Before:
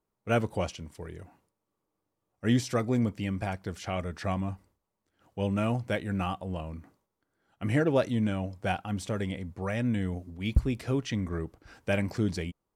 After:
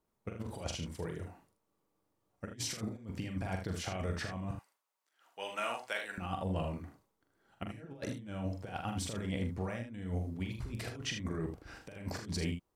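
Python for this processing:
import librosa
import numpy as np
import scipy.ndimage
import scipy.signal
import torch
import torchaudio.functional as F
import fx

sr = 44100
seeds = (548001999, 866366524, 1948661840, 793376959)

p1 = fx.highpass(x, sr, hz=980.0, slope=12, at=(4.51, 6.18))
p2 = fx.over_compress(p1, sr, threshold_db=-34.0, ratio=-0.5)
p3 = p2 + fx.room_early_taps(p2, sr, ms=(43, 78), db=(-6.0, -8.0), dry=0)
y = p3 * librosa.db_to_amplitude(-4.5)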